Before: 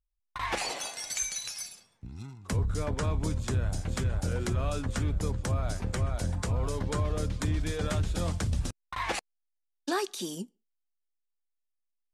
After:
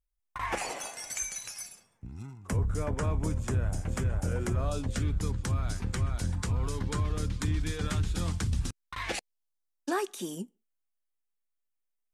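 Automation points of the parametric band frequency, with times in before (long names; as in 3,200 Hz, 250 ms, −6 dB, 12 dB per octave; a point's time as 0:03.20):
parametric band −10.5 dB 0.73 octaves
0:04.52 4,000 Hz
0:05.12 600 Hz
0:08.81 600 Hz
0:09.98 4,500 Hz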